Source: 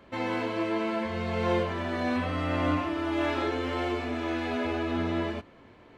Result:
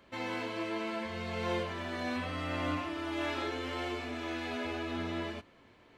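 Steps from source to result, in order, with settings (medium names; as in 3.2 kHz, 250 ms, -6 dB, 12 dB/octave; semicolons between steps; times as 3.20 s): treble shelf 2.1 kHz +8.5 dB; trim -8 dB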